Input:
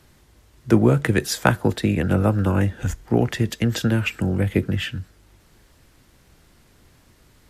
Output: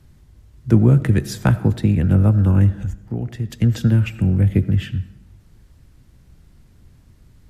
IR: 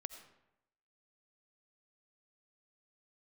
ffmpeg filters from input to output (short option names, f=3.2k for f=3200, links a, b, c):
-filter_complex "[0:a]bass=f=250:g=14,treble=f=4k:g=3,asettb=1/sr,asplit=3[a][b][c];[a]atrim=end=2.824[d];[b]atrim=start=2.82:end=3.5,asetpts=PTS-STARTPTS,afade=t=in:d=0.004:c=qsin,afade=t=out:st=0.676:d=0.004:c=qsin,acompressor=threshold=-32dB:ratio=1.5[e];[c]atrim=start=3.496[f];[d][e]acrossfade=d=0.004:c1=hsin:c2=qsin[g];[g][f]acrossfade=d=0.004:c1=qsin:c2=hsin,asplit=2[h][i];[1:a]atrim=start_sample=2205,highshelf=f=4.8k:g=-10[j];[i][j]afir=irnorm=-1:irlink=0,volume=3dB[k];[h][k]amix=inputs=2:normalize=0,volume=-11.5dB"